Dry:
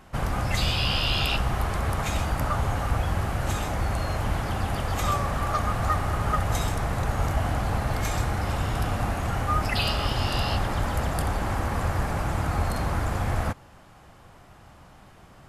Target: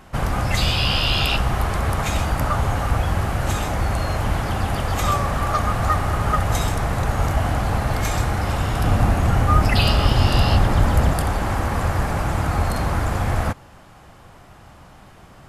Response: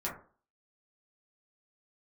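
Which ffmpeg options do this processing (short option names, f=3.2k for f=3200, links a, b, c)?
-filter_complex "[0:a]asettb=1/sr,asplit=3[a][b][c];[a]atrim=end=8.844[d];[b]atrim=start=8.84:end=11.14,asetpts=PTS-STARTPTS,afade=t=in:d=0.004:c=qsin,afade=t=out:st=2.296:d=0.004:c=qsin,lowshelf=f=400:g=6[e];[c]atrim=start=11.136[f];[d][e]acrossfade=d=0.004:c1=hsin:c2=qsin[g];[g][f]acrossfade=d=0.004:c1=qsin:c2=hsin,volume=5dB"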